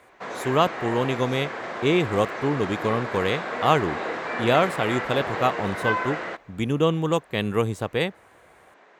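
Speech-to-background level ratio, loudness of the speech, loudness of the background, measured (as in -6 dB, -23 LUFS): 5.5 dB, -25.0 LUFS, -30.5 LUFS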